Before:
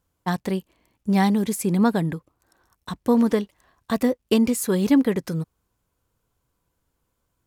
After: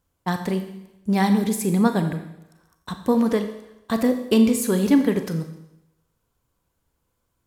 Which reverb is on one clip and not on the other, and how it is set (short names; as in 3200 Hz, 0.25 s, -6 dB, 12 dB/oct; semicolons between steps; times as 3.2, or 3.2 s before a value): Schroeder reverb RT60 0.86 s, combs from 28 ms, DRR 7 dB